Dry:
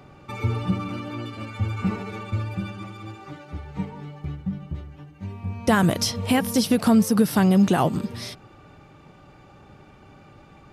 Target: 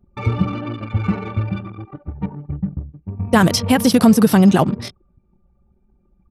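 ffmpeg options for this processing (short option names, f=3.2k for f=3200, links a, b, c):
-af "atempo=1.7,anlmdn=2.51,volume=6.5dB"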